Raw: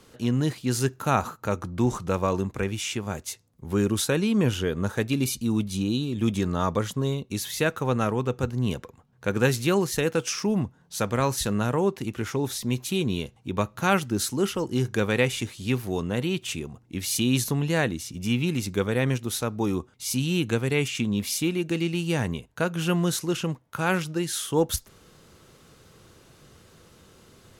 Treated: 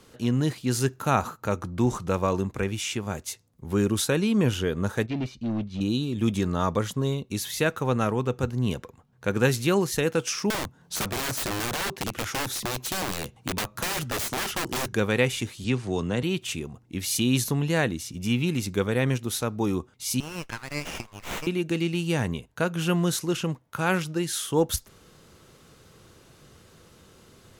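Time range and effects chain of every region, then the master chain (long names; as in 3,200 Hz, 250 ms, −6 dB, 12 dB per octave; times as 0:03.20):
0:05.06–0:05.81: hard clipping −24.5 dBFS + high-frequency loss of the air 200 metres + expander for the loud parts, over −38 dBFS
0:10.50–0:14.93: wrap-around overflow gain 24 dB + multiband upward and downward compressor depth 70%
0:15.64–0:16.23: Butterworth low-pass 9,100 Hz 48 dB per octave + multiband upward and downward compressor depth 40%
0:20.20–0:21.47: high-pass filter 930 Hz 24 dB per octave + windowed peak hold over 9 samples
whole clip: no processing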